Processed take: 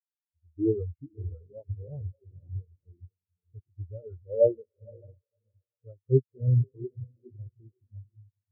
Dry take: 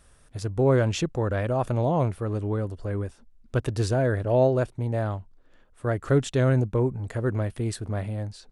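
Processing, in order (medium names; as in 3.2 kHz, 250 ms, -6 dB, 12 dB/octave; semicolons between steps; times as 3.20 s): pitch bend over the whole clip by -4 st ending unshifted; peaking EQ 1 kHz +2.5 dB 2.9 oct; on a send: echo that smears into a reverb 535 ms, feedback 40%, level -6 dB; on the sum: spectral contrast expander 4:1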